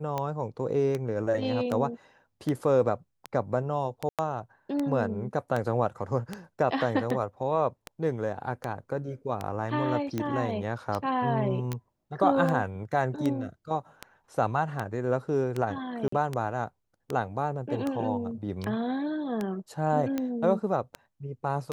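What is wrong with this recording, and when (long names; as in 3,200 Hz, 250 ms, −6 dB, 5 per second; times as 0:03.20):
scratch tick 78 rpm −17 dBFS
0:04.09–0:04.19: drop-out 97 ms
0:11.73: click −19 dBFS
0:16.08–0:16.12: drop-out 44 ms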